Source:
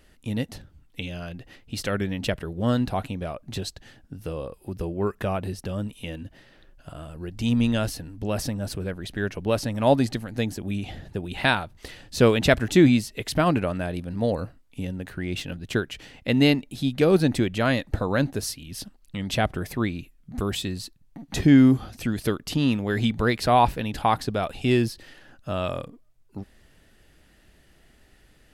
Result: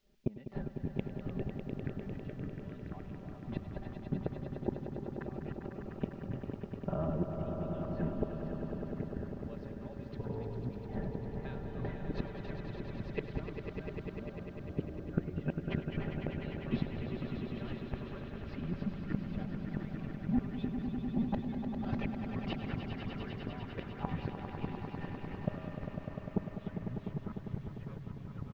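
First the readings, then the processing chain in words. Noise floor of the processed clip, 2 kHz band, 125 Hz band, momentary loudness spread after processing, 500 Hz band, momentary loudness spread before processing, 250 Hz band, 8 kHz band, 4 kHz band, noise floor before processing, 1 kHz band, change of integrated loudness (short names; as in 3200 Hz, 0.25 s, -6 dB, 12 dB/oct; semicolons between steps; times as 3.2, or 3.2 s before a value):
-48 dBFS, -19.5 dB, -10.5 dB, 7 LU, -15.5 dB, 18 LU, -13.5 dB, under -35 dB, -23.0 dB, -58 dBFS, -19.0 dB, -15.0 dB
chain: low-pass opened by the level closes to 630 Hz, open at -15 dBFS; expander -44 dBFS; low shelf 130 Hz -7.5 dB; comb 5.1 ms, depth 95%; compressor 3:1, threshold -28 dBFS, peak gain reduction 14.5 dB; flipped gate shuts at -27 dBFS, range -29 dB; added noise violet -68 dBFS; random-step tremolo; on a send: swelling echo 0.1 s, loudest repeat 5, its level -8.5 dB; on the sum: echoes that change speed 0.466 s, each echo -6 st, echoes 3, each echo -6 dB; air absorption 240 m; gain +9 dB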